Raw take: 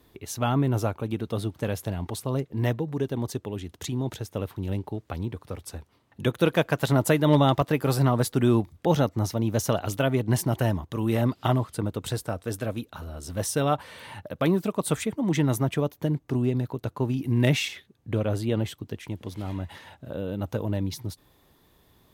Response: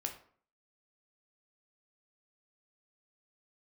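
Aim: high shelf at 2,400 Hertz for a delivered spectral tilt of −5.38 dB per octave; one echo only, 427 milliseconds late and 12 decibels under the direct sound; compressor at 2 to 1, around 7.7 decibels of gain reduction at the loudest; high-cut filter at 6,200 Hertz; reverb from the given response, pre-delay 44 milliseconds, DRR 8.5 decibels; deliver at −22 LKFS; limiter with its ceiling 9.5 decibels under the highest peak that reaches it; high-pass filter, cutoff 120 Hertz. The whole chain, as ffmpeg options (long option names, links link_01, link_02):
-filter_complex "[0:a]highpass=120,lowpass=6200,highshelf=frequency=2400:gain=4.5,acompressor=threshold=-30dB:ratio=2,alimiter=limit=-22dB:level=0:latency=1,aecho=1:1:427:0.251,asplit=2[link_01][link_02];[1:a]atrim=start_sample=2205,adelay=44[link_03];[link_02][link_03]afir=irnorm=-1:irlink=0,volume=-8.5dB[link_04];[link_01][link_04]amix=inputs=2:normalize=0,volume=12dB"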